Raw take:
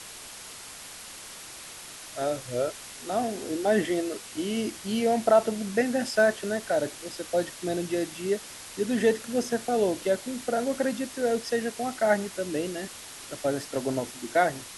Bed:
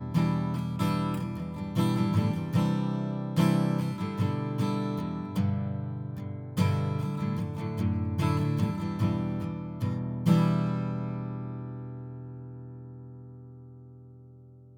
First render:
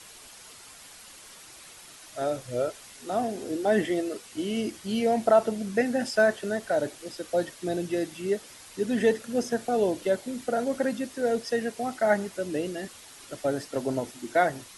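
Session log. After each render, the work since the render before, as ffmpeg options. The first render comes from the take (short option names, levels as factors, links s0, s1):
-af "afftdn=nr=7:nf=-43"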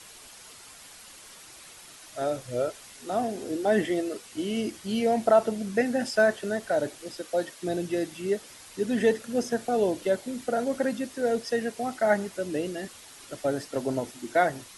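-filter_complex "[0:a]asettb=1/sr,asplit=3[s0][s1][s2];[s0]atrim=end=7.214[s3];[s1]atrim=start=7.21:end=7.63,asetpts=PTS-STARTPTS,afade=t=in:d=0.004:c=qsin,afade=t=out:st=0.416:d=0.004:c=qsin,lowshelf=f=150:g=-12[s4];[s2]atrim=start=7.626[s5];[s3][s4]acrossfade=d=0.004:c1=hsin:c2=qsin[s6];[s6][s5]acrossfade=d=0.004:c1=qsin:c2=hsin"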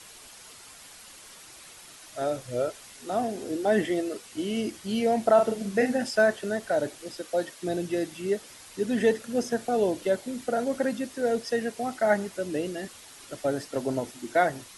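-filter_complex "[0:a]asettb=1/sr,asplit=3[s0][s1][s2];[s0]atrim=end=5.344[s3];[s1]atrim=start=5.34:end=5.98,asetpts=PTS-STARTPTS,afade=t=in:d=0.004:c=qsin,afade=t=out:st=0.636:d=0.004:c=qsin,asplit=2[s4][s5];[s5]adelay=40,volume=0.531[s6];[s4][s6]amix=inputs=2:normalize=0,atrim=end_sample=28224[s7];[s2]atrim=start=5.976[s8];[s3][s7]acrossfade=d=0.004:c1=hsin:c2=qsin[s9];[s9][s8]acrossfade=d=0.004:c1=qsin:c2=hsin"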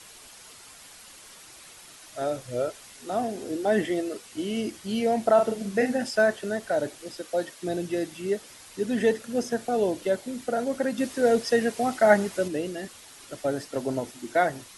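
-filter_complex "[0:a]asplit=3[s0][s1][s2];[s0]atrim=end=10.982[s3];[s1]atrim=start=10.978:end=12.482,asetpts=PTS-STARTPTS,volume=1.78[s4];[s2]atrim=start=12.478[s5];[s3][s4]acrossfade=d=0.004:c1=hsin:c2=hsin[s6];[s6][s5]acrossfade=d=0.004:c1=hsin:c2=hsin"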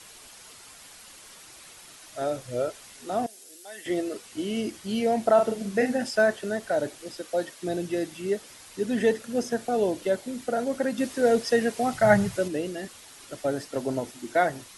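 -filter_complex "[0:a]asettb=1/sr,asplit=3[s0][s1][s2];[s0]atrim=end=3.264[s3];[s1]atrim=start=3.26:end=3.86,asetpts=PTS-STARTPTS,afade=t=in:d=0.004:c=qsin,afade=t=out:st=0.596:d=0.004:c=qsin,aderivative[s4];[s2]atrim=start=3.856[s5];[s3][s4]acrossfade=d=0.004:c1=hsin:c2=qsin[s6];[s6][s5]acrossfade=d=0.004:c1=qsin:c2=hsin,asettb=1/sr,asplit=3[s7][s8][s9];[s7]atrim=end=11.934[s10];[s8]atrim=start=11.93:end=12.36,asetpts=PTS-STARTPTS,afade=t=in:d=0.004:c=qsin,afade=t=out:st=0.426:d=0.004:c=qsin,lowshelf=f=190:t=q:w=3:g=12.5[s11];[s9]atrim=start=12.356[s12];[s10][s11]acrossfade=d=0.004:c1=hsin:c2=qsin[s13];[s13][s12]acrossfade=d=0.004:c1=qsin:c2=hsin"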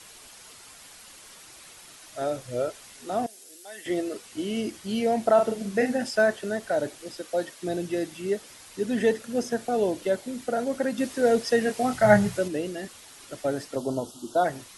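-filter_complex "[0:a]asettb=1/sr,asplit=3[s0][s1][s2];[s0]atrim=end=11.624[s3];[s1]atrim=start=11.62:end=12.39,asetpts=PTS-STARTPTS,afade=t=in:d=0.004:c=qsin,afade=t=out:st=0.766:d=0.004:c=qsin,asplit=2[s4][s5];[s5]adelay=24,volume=0.422[s6];[s4][s6]amix=inputs=2:normalize=0,atrim=end_sample=33957[s7];[s2]atrim=start=12.386[s8];[s3][s7]acrossfade=d=0.004:c1=hsin:c2=qsin[s9];[s9][s8]acrossfade=d=0.004:c1=qsin:c2=hsin,asplit=3[s10][s11][s12];[s10]afade=t=out:st=13.75:d=0.02[s13];[s11]asuperstop=centerf=2000:order=8:qfactor=1.3,afade=t=in:st=13.75:d=0.02,afade=t=out:st=14.44:d=0.02[s14];[s12]afade=t=in:st=14.44:d=0.02[s15];[s13][s14][s15]amix=inputs=3:normalize=0"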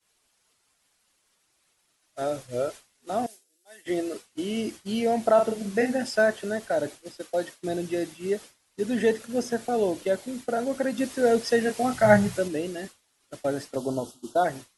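-af "agate=range=0.0224:threshold=0.02:ratio=3:detection=peak"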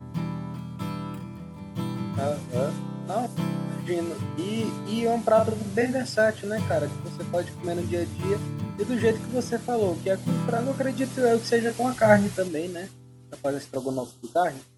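-filter_complex "[1:a]volume=0.596[s0];[0:a][s0]amix=inputs=2:normalize=0"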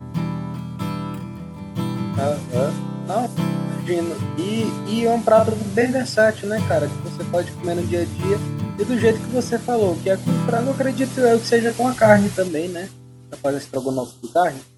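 -af "volume=2,alimiter=limit=0.891:level=0:latency=1"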